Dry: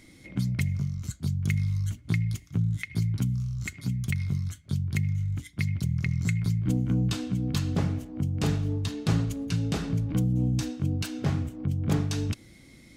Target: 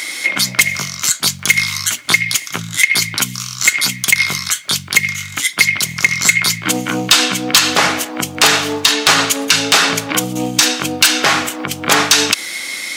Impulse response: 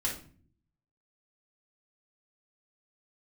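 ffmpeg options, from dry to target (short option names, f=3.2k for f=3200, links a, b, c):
-af "highpass=1.1k,asoftclip=type=hard:threshold=-30.5dB,alimiter=level_in=35dB:limit=-1dB:release=50:level=0:latency=1,volume=-1dB"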